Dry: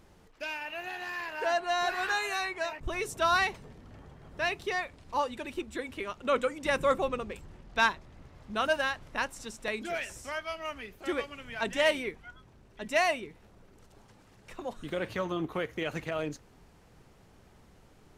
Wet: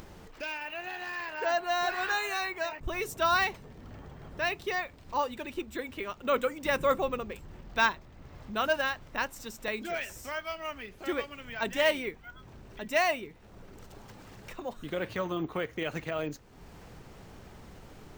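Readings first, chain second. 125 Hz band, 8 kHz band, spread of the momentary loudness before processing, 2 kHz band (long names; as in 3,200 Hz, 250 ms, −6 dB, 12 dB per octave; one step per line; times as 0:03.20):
+0.5 dB, −1.0 dB, 14 LU, 0.0 dB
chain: bad sample-rate conversion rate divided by 2×, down filtered, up hold
upward compression, threshold −39 dBFS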